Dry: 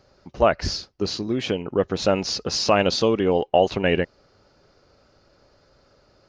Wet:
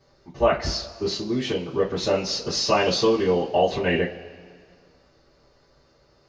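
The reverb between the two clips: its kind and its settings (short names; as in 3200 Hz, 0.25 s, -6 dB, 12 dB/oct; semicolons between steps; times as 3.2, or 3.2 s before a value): two-slope reverb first 0.21 s, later 1.9 s, from -22 dB, DRR -9.5 dB; gain -10.5 dB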